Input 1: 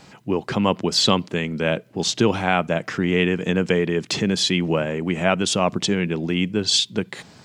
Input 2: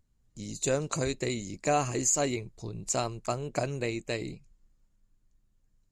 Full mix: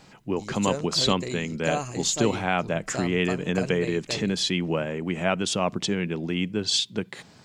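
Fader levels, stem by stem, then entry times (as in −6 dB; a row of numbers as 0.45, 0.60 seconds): −5.0, −2.5 decibels; 0.00, 0.00 seconds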